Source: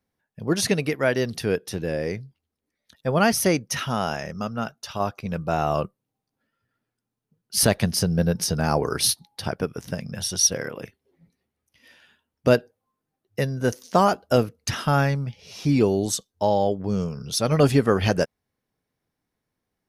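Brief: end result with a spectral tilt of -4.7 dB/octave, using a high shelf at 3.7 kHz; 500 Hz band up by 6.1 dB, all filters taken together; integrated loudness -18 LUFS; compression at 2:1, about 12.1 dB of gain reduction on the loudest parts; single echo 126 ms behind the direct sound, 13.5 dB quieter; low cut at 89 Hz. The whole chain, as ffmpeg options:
-af "highpass=89,equalizer=f=500:t=o:g=7.5,highshelf=f=3700:g=-4,acompressor=threshold=0.0282:ratio=2,aecho=1:1:126:0.211,volume=3.98"

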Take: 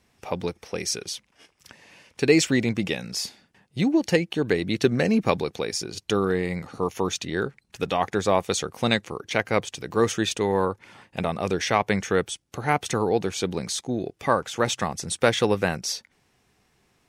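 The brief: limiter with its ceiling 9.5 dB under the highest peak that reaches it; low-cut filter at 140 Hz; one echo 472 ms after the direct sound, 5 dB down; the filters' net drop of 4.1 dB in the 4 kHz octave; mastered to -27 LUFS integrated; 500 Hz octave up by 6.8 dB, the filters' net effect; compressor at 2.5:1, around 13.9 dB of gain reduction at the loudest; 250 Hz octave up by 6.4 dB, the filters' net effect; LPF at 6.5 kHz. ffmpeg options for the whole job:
-af "highpass=140,lowpass=6500,equalizer=f=250:t=o:g=7,equalizer=f=500:t=o:g=6,equalizer=f=4000:t=o:g=-4.5,acompressor=threshold=0.0355:ratio=2.5,alimiter=limit=0.1:level=0:latency=1,aecho=1:1:472:0.562,volume=1.78"

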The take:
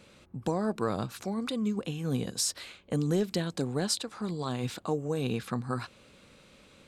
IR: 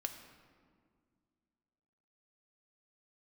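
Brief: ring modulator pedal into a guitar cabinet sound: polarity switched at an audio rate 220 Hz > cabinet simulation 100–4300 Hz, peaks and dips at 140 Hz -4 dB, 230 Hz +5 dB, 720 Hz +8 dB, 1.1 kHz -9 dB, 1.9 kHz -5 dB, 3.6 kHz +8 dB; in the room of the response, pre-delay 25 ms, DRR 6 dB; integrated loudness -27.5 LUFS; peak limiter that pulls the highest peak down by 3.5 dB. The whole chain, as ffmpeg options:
-filter_complex "[0:a]alimiter=limit=0.0794:level=0:latency=1,asplit=2[s0][s1];[1:a]atrim=start_sample=2205,adelay=25[s2];[s1][s2]afir=irnorm=-1:irlink=0,volume=0.562[s3];[s0][s3]amix=inputs=2:normalize=0,aeval=exprs='val(0)*sgn(sin(2*PI*220*n/s))':c=same,highpass=100,equalizer=f=140:t=q:w=4:g=-4,equalizer=f=230:t=q:w=4:g=5,equalizer=f=720:t=q:w=4:g=8,equalizer=f=1100:t=q:w=4:g=-9,equalizer=f=1900:t=q:w=4:g=-5,equalizer=f=3600:t=q:w=4:g=8,lowpass=f=4300:w=0.5412,lowpass=f=4300:w=1.3066,volume=1.78"

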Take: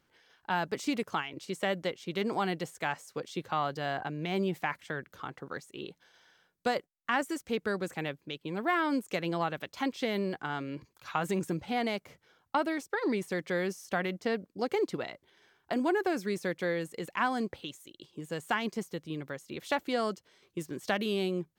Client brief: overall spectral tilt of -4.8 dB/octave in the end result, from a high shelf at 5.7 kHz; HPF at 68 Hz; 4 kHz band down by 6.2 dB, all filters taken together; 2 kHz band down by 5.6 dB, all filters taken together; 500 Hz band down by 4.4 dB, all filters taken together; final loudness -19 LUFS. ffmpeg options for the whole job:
-af "highpass=68,equalizer=f=500:t=o:g=-5.5,equalizer=f=2000:t=o:g=-5.5,equalizer=f=4000:t=o:g=-3.5,highshelf=f=5700:g=-7,volume=7.5"

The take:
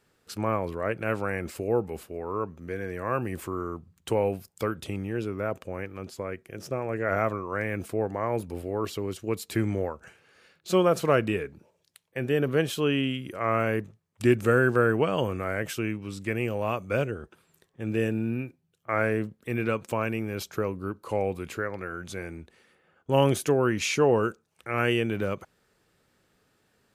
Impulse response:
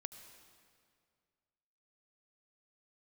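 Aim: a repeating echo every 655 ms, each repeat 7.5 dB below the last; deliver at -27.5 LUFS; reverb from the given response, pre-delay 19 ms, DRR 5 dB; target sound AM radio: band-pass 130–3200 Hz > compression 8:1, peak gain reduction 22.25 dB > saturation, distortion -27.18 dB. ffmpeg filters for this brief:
-filter_complex "[0:a]aecho=1:1:655|1310|1965|2620|3275:0.422|0.177|0.0744|0.0312|0.0131,asplit=2[s0][s1];[1:a]atrim=start_sample=2205,adelay=19[s2];[s1][s2]afir=irnorm=-1:irlink=0,volume=0.891[s3];[s0][s3]amix=inputs=2:normalize=0,highpass=130,lowpass=3200,acompressor=threshold=0.0141:ratio=8,asoftclip=threshold=0.0501,volume=5.01"

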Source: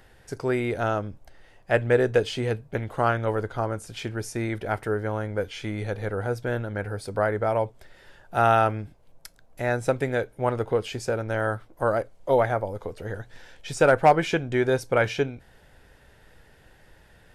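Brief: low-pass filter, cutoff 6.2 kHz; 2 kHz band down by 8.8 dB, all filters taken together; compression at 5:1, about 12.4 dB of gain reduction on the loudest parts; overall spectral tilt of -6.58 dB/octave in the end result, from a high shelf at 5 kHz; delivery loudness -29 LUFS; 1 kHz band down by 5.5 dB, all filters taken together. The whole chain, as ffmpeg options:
-af "lowpass=6200,equalizer=f=1000:t=o:g=-6,equalizer=f=2000:t=o:g=-9,highshelf=f=5000:g=-5,acompressor=threshold=0.0316:ratio=5,volume=2.11"

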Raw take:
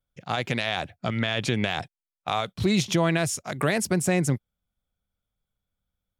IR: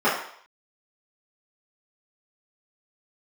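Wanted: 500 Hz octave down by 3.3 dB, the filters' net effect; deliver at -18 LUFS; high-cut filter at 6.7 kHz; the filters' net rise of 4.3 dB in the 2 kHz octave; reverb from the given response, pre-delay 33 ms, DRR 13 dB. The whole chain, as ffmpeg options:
-filter_complex "[0:a]lowpass=6700,equalizer=f=500:t=o:g=-5,equalizer=f=2000:t=o:g=5.5,asplit=2[s0][s1];[1:a]atrim=start_sample=2205,adelay=33[s2];[s1][s2]afir=irnorm=-1:irlink=0,volume=0.0237[s3];[s0][s3]amix=inputs=2:normalize=0,volume=2.37"

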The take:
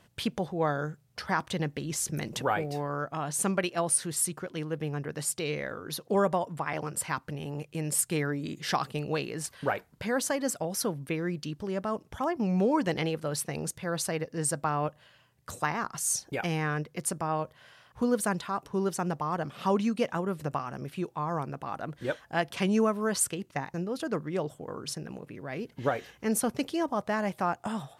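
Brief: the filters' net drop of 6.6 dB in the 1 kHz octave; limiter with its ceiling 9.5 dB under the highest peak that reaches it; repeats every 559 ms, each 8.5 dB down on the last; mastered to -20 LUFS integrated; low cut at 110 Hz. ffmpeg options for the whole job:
-af "highpass=110,equalizer=f=1000:t=o:g=-9,alimiter=limit=0.0668:level=0:latency=1,aecho=1:1:559|1118|1677|2236:0.376|0.143|0.0543|0.0206,volume=5.01"

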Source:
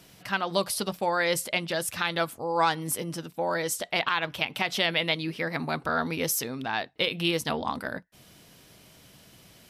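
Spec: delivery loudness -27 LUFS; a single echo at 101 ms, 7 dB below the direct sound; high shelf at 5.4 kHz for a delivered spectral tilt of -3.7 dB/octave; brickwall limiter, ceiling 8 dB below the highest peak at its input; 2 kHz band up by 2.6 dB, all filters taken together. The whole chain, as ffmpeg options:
-af "equalizer=f=2000:t=o:g=4.5,highshelf=f=5400:g=-8.5,alimiter=limit=0.126:level=0:latency=1,aecho=1:1:101:0.447,volume=1.41"

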